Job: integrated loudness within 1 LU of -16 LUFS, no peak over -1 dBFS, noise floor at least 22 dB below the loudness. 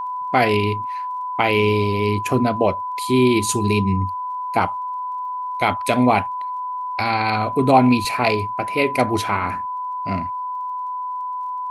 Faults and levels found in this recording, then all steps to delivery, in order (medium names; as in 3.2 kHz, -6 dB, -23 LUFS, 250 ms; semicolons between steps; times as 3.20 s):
tick rate 29 per s; steady tone 1 kHz; tone level -24 dBFS; loudness -20.5 LUFS; peak level -2.0 dBFS; loudness target -16.0 LUFS
-> de-click; band-stop 1 kHz, Q 30; trim +4.5 dB; peak limiter -1 dBFS